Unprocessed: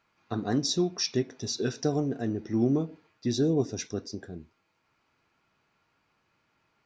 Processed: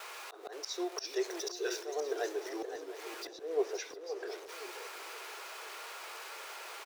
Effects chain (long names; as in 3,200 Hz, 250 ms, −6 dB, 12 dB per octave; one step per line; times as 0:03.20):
converter with a step at zero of −41.5 dBFS
Butterworth high-pass 380 Hz 72 dB per octave
noise gate with hold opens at −39 dBFS
0:03.27–0:04.28: low-pass filter 1,700 Hz 6 dB per octave
volume swells 270 ms
single-tap delay 705 ms −16.5 dB
feedback echo with a swinging delay time 522 ms, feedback 37%, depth 186 cents, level −9 dB
level +1.5 dB